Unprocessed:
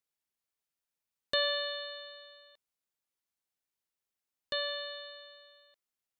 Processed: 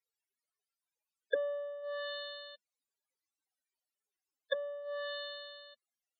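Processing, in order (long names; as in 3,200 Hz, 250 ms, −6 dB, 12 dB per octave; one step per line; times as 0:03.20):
treble cut that deepens with the level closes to 340 Hz, closed at −34.5 dBFS
Butterworth high-pass 210 Hz 96 dB per octave
spectral peaks only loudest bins 16
level +9.5 dB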